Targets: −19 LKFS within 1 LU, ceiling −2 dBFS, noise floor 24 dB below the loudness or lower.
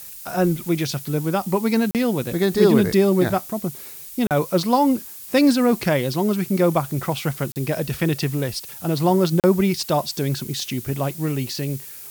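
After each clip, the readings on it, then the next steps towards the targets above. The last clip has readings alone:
number of dropouts 4; longest dropout 38 ms; background noise floor −38 dBFS; target noise floor −45 dBFS; integrated loudness −21.0 LKFS; sample peak −3.5 dBFS; target loudness −19.0 LKFS
→ repair the gap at 0:01.91/0:04.27/0:07.52/0:09.40, 38 ms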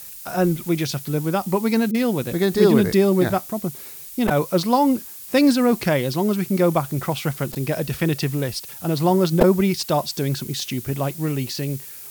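number of dropouts 0; background noise floor −38 dBFS; target noise floor −45 dBFS
→ broadband denoise 7 dB, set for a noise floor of −38 dBFS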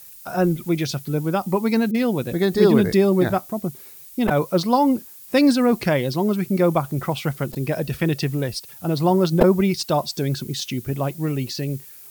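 background noise floor −43 dBFS; target noise floor −45 dBFS
→ broadband denoise 6 dB, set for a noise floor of −43 dBFS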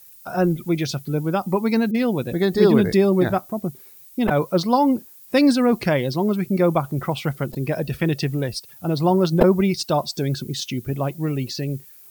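background noise floor −46 dBFS; integrated loudness −21.0 LKFS; sample peak −2.5 dBFS; target loudness −19.0 LKFS
→ level +2 dB
brickwall limiter −2 dBFS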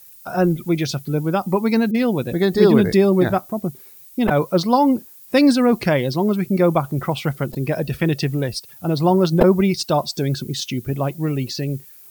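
integrated loudness −19.0 LKFS; sample peak −2.0 dBFS; background noise floor −44 dBFS

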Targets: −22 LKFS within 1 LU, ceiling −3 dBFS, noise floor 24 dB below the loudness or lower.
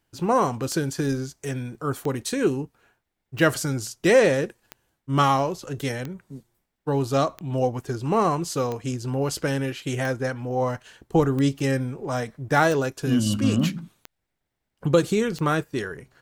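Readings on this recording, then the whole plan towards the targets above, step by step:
number of clicks 12; integrated loudness −24.5 LKFS; sample peak −6.0 dBFS; target loudness −22.0 LKFS
→ click removal
level +2.5 dB

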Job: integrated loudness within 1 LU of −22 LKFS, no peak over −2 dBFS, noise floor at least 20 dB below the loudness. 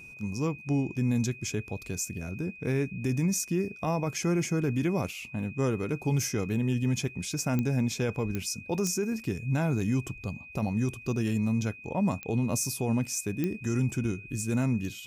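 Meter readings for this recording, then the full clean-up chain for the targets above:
number of clicks 5; interfering tone 2,500 Hz; level of the tone −45 dBFS; integrated loudness −30.0 LKFS; sample peak −14.0 dBFS; target loudness −22.0 LKFS
→ click removal
notch filter 2,500 Hz, Q 30
level +8 dB

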